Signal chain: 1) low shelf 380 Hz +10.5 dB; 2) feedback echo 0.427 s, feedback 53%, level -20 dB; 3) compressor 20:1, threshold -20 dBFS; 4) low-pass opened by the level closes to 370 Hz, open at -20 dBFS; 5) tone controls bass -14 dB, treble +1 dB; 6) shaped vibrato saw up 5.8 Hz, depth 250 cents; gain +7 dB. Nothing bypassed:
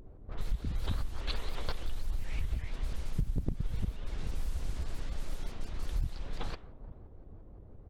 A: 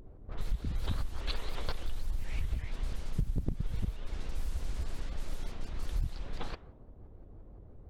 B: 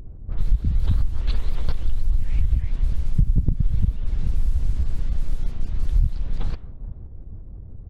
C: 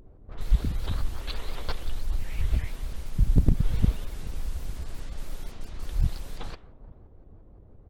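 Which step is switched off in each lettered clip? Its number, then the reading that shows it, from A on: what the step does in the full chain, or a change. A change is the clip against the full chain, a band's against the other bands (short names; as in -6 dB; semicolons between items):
2, momentary loudness spread change +2 LU; 5, crest factor change -5.0 dB; 3, mean gain reduction 3.5 dB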